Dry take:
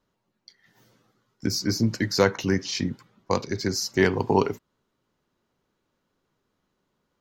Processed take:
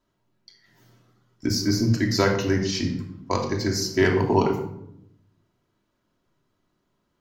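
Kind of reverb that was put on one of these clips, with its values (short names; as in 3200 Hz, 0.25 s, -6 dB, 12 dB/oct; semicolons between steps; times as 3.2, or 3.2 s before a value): shoebox room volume 1900 m³, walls furnished, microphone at 2.9 m; gain -1.5 dB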